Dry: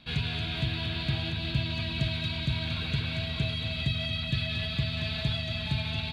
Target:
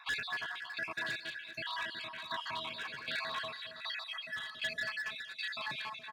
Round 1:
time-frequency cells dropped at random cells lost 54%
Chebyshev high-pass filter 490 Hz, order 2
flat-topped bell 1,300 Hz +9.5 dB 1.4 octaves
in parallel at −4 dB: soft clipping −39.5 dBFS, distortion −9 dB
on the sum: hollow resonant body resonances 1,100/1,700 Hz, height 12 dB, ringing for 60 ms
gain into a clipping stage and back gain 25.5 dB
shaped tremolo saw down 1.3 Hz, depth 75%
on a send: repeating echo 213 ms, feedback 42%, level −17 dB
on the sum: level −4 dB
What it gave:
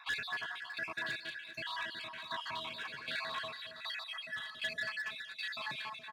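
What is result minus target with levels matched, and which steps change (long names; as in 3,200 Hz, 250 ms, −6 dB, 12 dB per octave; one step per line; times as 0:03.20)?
soft clipping: distortion +14 dB
change: soft clipping −27.5 dBFS, distortion −23 dB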